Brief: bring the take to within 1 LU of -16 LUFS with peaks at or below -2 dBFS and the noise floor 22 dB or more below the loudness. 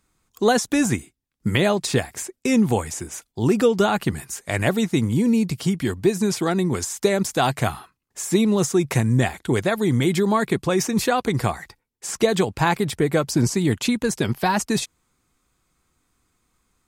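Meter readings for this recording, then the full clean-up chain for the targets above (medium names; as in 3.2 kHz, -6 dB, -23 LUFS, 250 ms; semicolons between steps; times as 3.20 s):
loudness -21.5 LUFS; peak level -5.5 dBFS; loudness target -16.0 LUFS
-> trim +5.5 dB; peak limiter -2 dBFS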